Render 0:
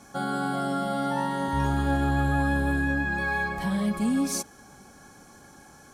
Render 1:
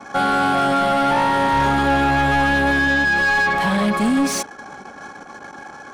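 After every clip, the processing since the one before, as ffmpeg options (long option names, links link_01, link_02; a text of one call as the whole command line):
ffmpeg -i in.wav -filter_complex "[0:a]asplit=2[link_01][link_02];[link_02]highpass=frequency=720:poles=1,volume=22dB,asoftclip=type=tanh:threshold=-13.5dB[link_03];[link_01][link_03]amix=inputs=2:normalize=0,lowpass=frequency=2700:poles=1,volume=-6dB,anlmdn=0.631,volume=4dB" out.wav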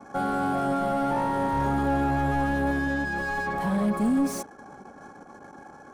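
ffmpeg -i in.wav -af "equalizer=frequency=3200:width=0.46:gain=-14.5,volume=-4.5dB" out.wav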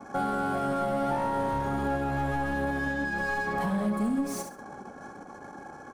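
ffmpeg -i in.wav -filter_complex "[0:a]asplit=2[link_01][link_02];[link_02]aecho=0:1:67|134|201:0.376|0.0902|0.0216[link_03];[link_01][link_03]amix=inputs=2:normalize=0,alimiter=limit=-22.5dB:level=0:latency=1:release=370,volume=1.5dB" out.wav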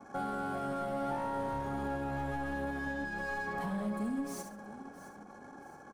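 ffmpeg -i in.wav -af "aecho=1:1:668|1336|2004|2672:0.158|0.0666|0.028|0.0117,volume=-7.5dB" out.wav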